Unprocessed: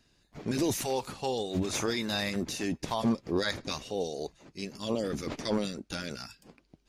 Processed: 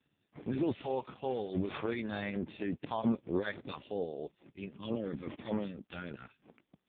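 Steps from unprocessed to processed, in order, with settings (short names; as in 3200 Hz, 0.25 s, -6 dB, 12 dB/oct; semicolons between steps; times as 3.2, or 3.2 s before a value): 1.28–1.93 careless resampling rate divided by 6×, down none, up hold; 4.1–5.94 bell 1200 Hz -> 300 Hz -4 dB 0.89 oct; gain -3 dB; AMR-NB 4.75 kbps 8000 Hz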